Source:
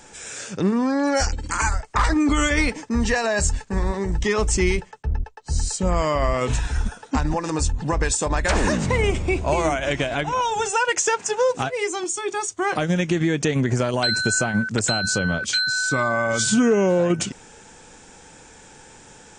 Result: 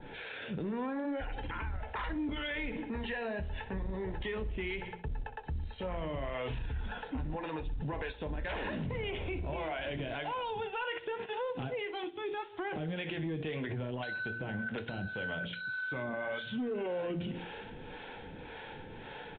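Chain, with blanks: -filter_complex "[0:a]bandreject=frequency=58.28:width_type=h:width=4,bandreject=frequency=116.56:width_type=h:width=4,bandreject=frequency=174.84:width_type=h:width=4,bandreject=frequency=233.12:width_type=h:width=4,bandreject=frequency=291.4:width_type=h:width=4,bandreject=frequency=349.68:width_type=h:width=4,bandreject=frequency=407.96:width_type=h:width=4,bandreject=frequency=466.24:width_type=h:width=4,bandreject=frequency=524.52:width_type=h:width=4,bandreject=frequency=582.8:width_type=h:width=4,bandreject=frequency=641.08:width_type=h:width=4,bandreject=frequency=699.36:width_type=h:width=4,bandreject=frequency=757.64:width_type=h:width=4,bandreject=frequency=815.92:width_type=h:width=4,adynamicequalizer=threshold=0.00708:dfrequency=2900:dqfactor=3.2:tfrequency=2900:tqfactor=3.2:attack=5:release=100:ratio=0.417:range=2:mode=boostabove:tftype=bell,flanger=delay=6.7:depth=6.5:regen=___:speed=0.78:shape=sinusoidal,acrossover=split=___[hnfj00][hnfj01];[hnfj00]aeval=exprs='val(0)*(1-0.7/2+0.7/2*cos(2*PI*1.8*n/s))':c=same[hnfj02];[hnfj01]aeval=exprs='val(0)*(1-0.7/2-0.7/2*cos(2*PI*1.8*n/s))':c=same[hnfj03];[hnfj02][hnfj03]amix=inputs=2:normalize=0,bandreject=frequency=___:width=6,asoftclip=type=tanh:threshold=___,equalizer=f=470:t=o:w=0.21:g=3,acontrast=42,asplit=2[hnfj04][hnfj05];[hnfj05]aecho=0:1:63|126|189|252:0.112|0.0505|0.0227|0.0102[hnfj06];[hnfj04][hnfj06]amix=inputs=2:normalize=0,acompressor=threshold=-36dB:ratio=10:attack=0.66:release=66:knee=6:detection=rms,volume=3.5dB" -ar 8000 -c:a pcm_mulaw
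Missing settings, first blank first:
-59, 420, 1.2k, -19dB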